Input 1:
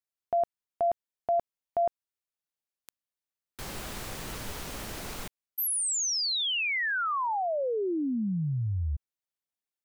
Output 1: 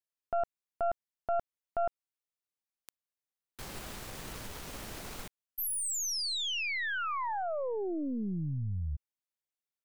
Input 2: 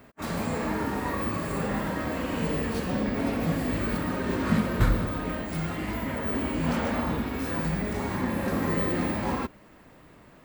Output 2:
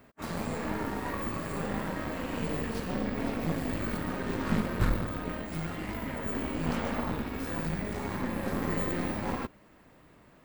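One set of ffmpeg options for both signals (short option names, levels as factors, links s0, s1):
-af "aeval=exprs='0.316*(cos(1*acos(clip(val(0)/0.316,-1,1)))-cos(1*PI/2))+0.0398*(cos(6*acos(clip(val(0)/0.316,-1,1)))-cos(6*PI/2))':c=same,volume=0.562"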